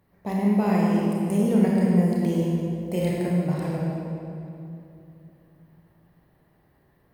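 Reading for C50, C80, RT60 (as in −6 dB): −2.0 dB, −0.5 dB, 2.8 s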